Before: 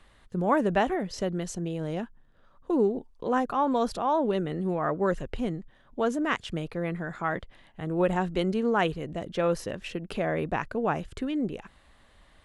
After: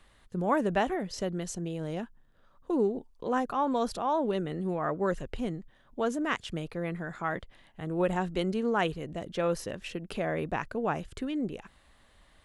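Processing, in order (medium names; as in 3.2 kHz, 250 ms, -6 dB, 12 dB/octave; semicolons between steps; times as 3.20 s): treble shelf 4.9 kHz +4.5 dB; trim -3 dB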